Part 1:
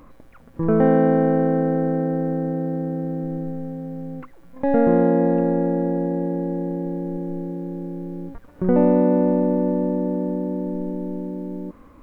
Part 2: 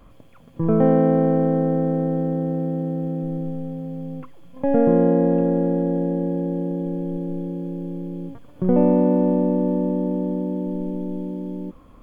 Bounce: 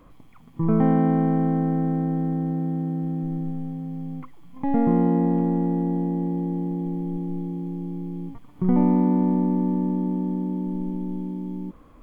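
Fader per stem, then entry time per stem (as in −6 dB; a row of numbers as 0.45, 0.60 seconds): −6.5, −4.5 decibels; 0.00, 0.00 seconds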